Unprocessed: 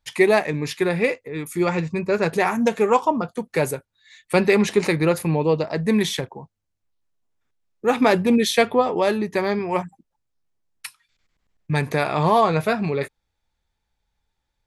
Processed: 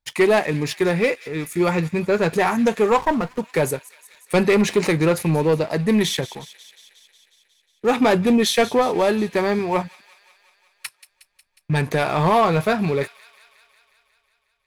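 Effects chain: waveshaping leveller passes 2; feedback echo behind a high-pass 181 ms, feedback 70%, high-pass 2.4 kHz, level -14.5 dB; 2.98–3.39 s: sliding maximum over 9 samples; trim -5 dB

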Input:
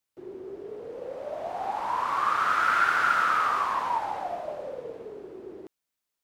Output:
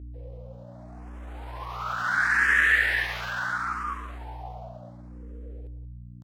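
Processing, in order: Doppler pass-by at 2.51 s, 14 m/s, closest 10 m; pitch shift +4.5 st; hum 60 Hz, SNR 11 dB; echo from a far wall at 31 m, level -14 dB; barber-pole phaser +0.72 Hz; trim +3.5 dB

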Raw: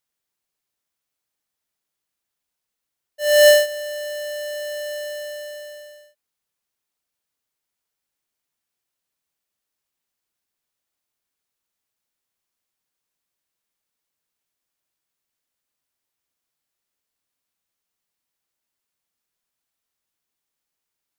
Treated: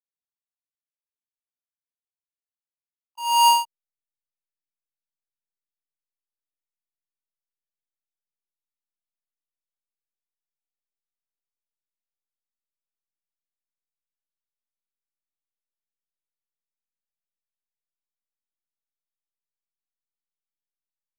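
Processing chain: reverse echo 94 ms -14 dB; hysteresis with a dead band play -20 dBFS; pitch shift +8 st; trim -3 dB

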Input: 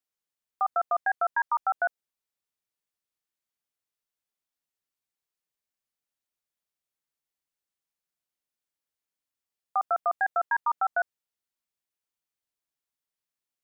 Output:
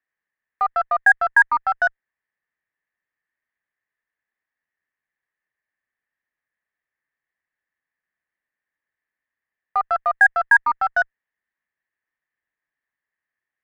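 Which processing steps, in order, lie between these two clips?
resonant low-pass 1.8 kHz, resonance Q 8.7; Chebyshev shaper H 8 -37 dB, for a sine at -6.5 dBFS; band-stop 1.4 kHz, Q 11; trim +2.5 dB

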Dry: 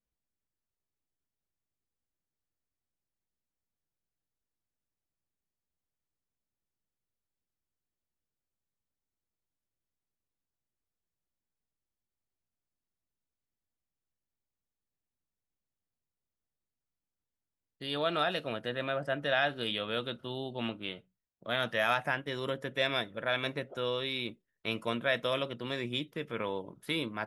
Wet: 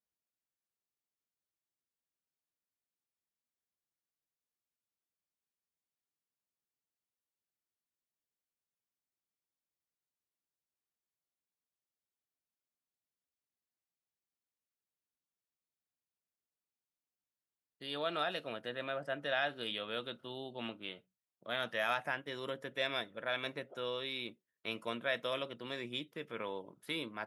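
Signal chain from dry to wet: high-pass 230 Hz 6 dB/octave; trim -5 dB

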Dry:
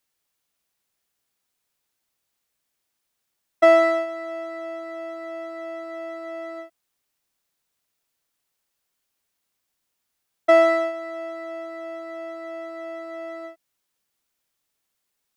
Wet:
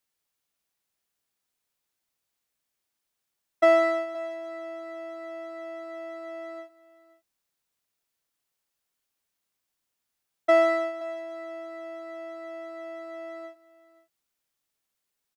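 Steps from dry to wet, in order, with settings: delay 523 ms -19 dB; trim -4.5 dB

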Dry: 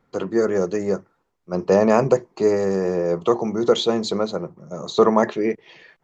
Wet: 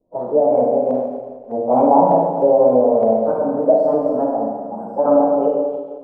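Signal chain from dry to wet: frequency-domain pitch shifter +4.5 st; FFT filter 920 Hz 0 dB, 1.7 kHz -27 dB, 3.3 kHz -10 dB, 5 kHz -10 dB, 7.9 kHz +8 dB; LFO low-pass saw up 3.3 Hz 450–1800 Hz; Schroeder reverb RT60 1.6 s, combs from 32 ms, DRR -2 dB; endings held to a fixed fall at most 100 dB/s

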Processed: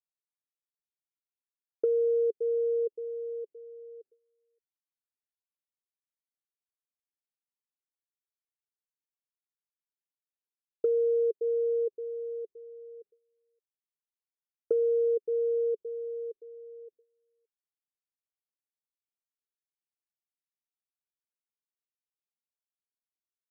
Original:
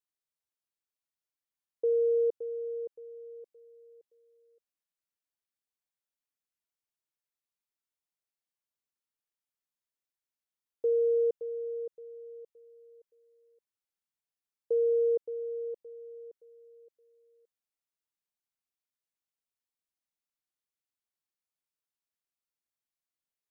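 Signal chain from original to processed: gate with hold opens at -59 dBFS; resonant low-pass 420 Hz, resonance Q 4.9; compression, threshold -25 dBFS, peak gain reduction 9.5 dB

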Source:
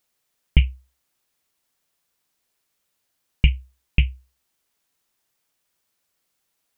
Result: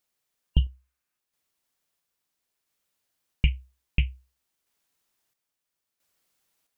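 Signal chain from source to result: random-step tremolo 1.5 Hz, depth 70%; spectral replace 0.49–1.15 s, 1–2.8 kHz before

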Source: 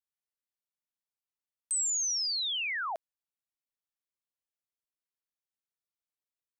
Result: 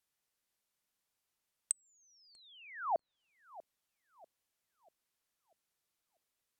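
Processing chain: low-pass that closes with the level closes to 430 Hz, closed at -31 dBFS; filtered feedback delay 642 ms, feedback 50%, low-pass 890 Hz, level -16 dB; trim +9.5 dB

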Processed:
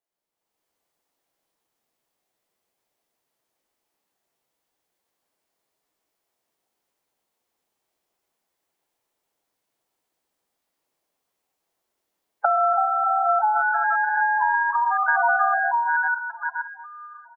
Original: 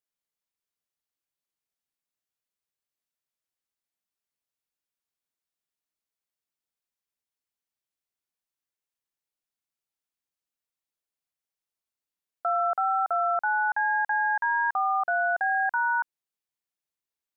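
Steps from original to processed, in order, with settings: chunks repeated in reverse 266 ms, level -10.5 dB; multi-tap echo 117/123/159/185 ms -18/-3.5/-11/-13.5 dB; level rider gain up to 10 dB; on a send: feedback echo behind a high-pass 1049 ms, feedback 32%, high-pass 1.6 kHz, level -21.5 dB; on the sum: dynamic bell 1.1 kHz, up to +6 dB, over -31 dBFS, Q 5.3; compression 12:1, threshold -20 dBFS, peak gain reduction 12.5 dB; spectral gate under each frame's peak -15 dB strong; peaking EQ 440 Hz +12.5 dB 2 oct; formant shift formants +4 st; trim -2 dB

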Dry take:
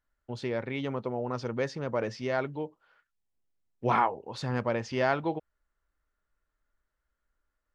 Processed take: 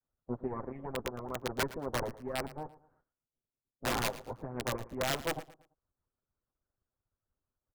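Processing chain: comb filter that takes the minimum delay 7.8 ms; Bessel low-pass 840 Hz, order 6; harmonic-percussive split harmonic -18 dB; integer overflow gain 28 dB; feedback delay 113 ms, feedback 32%, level -17 dB; trim +3.5 dB

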